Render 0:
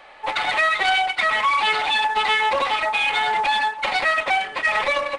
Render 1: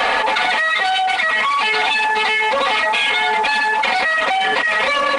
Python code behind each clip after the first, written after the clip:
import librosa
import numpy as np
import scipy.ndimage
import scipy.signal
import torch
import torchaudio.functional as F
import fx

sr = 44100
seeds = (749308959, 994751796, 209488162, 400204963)

y = fx.highpass(x, sr, hz=80.0, slope=6)
y = y + 0.82 * np.pad(y, (int(4.2 * sr / 1000.0), 0))[:len(y)]
y = fx.env_flatten(y, sr, amount_pct=100)
y = y * librosa.db_to_amplitude(-4.0)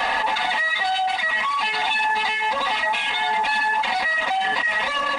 y = x + 0.51 * np.pad(x, (int(1.1 * sr / 1000.0), 0))[:len(x)]
y = y * librosa.db_to_amplitude(-6.5)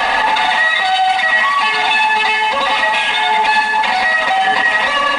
y = fx.echo_feedback(x, sr, ms=93, feedback_pct=57, wet_db=-7.5)
y = y * librosa.db_to_amplitude(7.0)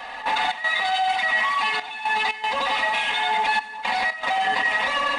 y = fx.step_gate(x, sr, bpm=117, pattern='..xx.xxxxxxxxx', floor_db=-12.0, edge_ms=4.5)
y = y * librosa.db_to_amplitude(-8.5)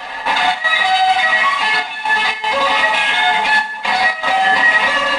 y = fx.room_early_taps(x, sr, ms=(11, 29, 73), db=(-6.5, -5.5, -14.0))
y = y * librosa.db_to_amplitude(7.0)